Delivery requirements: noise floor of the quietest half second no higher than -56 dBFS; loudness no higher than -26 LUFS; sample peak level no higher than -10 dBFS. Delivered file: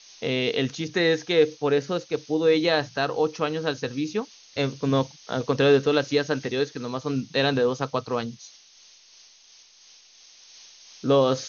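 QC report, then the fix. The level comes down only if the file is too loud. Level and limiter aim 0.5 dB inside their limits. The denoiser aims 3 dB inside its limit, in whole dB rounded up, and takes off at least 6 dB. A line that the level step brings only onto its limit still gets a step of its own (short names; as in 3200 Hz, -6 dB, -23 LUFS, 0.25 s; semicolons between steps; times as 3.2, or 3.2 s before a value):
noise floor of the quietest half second -54 dBFS: fail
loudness -24.5 LUFS: fail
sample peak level -8.0 dBFS: fail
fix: denoiser 6 dB, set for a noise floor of -54 dBFS; gain -2 dB; limiter -10.5 dBFS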